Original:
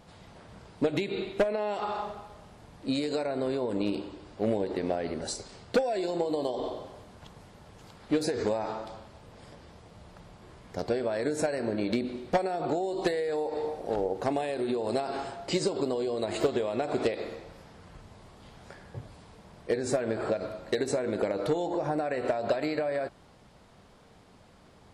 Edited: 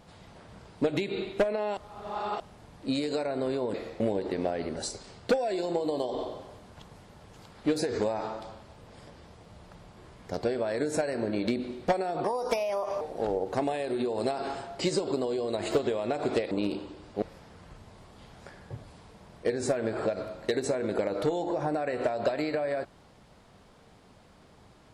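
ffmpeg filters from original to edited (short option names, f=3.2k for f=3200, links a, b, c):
-filter_complex "[0:a]asplit=9[a][b][c][d][e][f][g][h][i];[a]atrim=end=1.772[j];[b]atrim=start=1.768:end=2.402,asetpts=PTS-STARTPTS,areverse[k];[c]atrim=start=2.398:end=3.742[l];[d]atrim=start=17.198:end=17.462[m];[e]atrim=start=4.448:end=12.694[n];[f]atrim=start=12.69:end=13.7,asetpts=PTS-STARTPTS,asetrate=57771,aresample=44100[o];[g]atrim=start=13.696:end=17.202[p];[h]atrim=start=3.738:end=4.452[q];[i]atrim=start=17.458[r];[j][k]acrossfade=d=0.004:c1=hsin:c2=hsin[s];[s][l]acrossfade=d=0.004:c1=hsin:c2=hsin[t];[t][m]acrossfade=d=0.004:c1=hsin:c2=hsin[u];[u][n]acrossfade=d=0.004:c1=hsin:c2=hsin[v];[v][o]acrossfade=d=0.004:c1=hsin:c2=hsin[w];[w][p]acrossfade=d=0.004:c1=hsin:c2=hsin[x];[x][q]acrossfade=d=0.004:c1=hsin:c2=hsin[y];[y][r]acrossfade=d=0.004:c1=hsin:c2=hsin"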